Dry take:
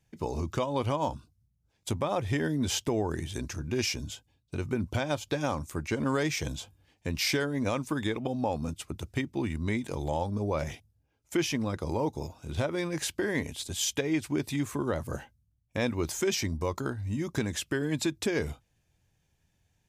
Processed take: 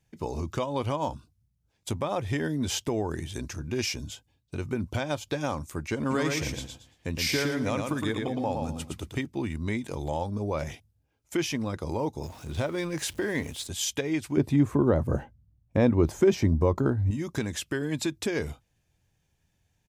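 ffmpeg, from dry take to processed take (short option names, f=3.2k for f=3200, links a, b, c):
-filter_complex "[0:a]asplit=3[a][b][c];[a]afade=t=out:st=6.09:d=0.02[d];[b]aecho=1:1:114|228|342:0.631|0.158|0.0394,afade=t=in:st=6.09:d=0.02,afade=t=out:st=9.25:d=0.02[e];[c]afade=t=in:st=9.25:d=0.02[f];[d][e][f]amix=inputs=3:normalize=0,asettb=1/sr,asplit=3[g][h][i];[g]atrim=end=12.234[j];[h]atrim=start=12.23:end=13.67,asetpts=PTS-STARTPTS,afade=t=in:d=0.004:c=qsin,afade=t=out:st=1.436:d=0.004:c=qsin,aeval=exprs='val(0)+0.5*0.00562*sgn(val(0))':c=same[k];[i]atrim=start=13.666[l];[j][k]acrossfade=d=0.004:c1=hsin:c2=qsin[m];[m][l]acrossfade=d=0.004:c1=qsin:c2=hsin,asettb=1/sr,asplit=3[n][o][p];[n]atrim=end=14.374[q];[o]atrim=start=14.37:end=17.11,asetpts=PTS-STARTPTS,afade=t=in:d=0.004:c=qsin,afade=t=out:st=2.736:d=0.004:c=qsin,tiltshelf=f=1.5k:g=9.5[r];[p]atrim=start=17.106[s];[q][r]acrossfade=d=0.004:c1=hsin:c2=qsin[t];[t][s]acrossfade=d=0.004:c1=qsin:c2=hsin"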